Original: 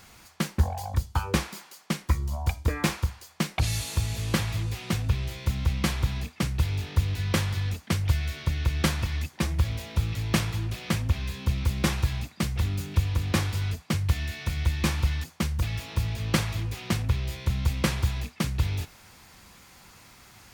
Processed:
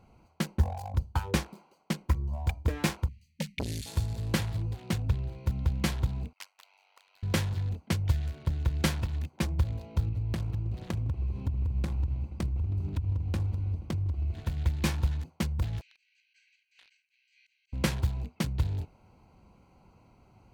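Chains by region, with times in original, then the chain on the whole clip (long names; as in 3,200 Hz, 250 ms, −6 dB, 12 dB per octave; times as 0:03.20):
0:03.08–0:03.86: linear-phase brick-wall band-stop 250–1,700 Hz + saturating transformer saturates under 620 Hz
0:06.33–0:07.23: Bessel high-pass filter 1,300 Hz, order 8 + amplitude modulation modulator 96 Hz, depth 75%
0:10.07–0:14.44: parametric band 72 Hz +12 dB 1.4 octaves + downward compressor 10 to 1, threshold −24 dBFS + echo that builds up and dies away 80 ms, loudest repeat 5, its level −18 dB
0:15.81–0:17.73: volume swells 111 ms + downward compressor 12 to 1, threshold −34 dBFS + linear-phase brick-wall band-pass 1,500–8,200 Hz
whole clip: adaptive Wiener filter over 25 samples; notch filter 1,200 Hz, Q 10; level −2.5 dB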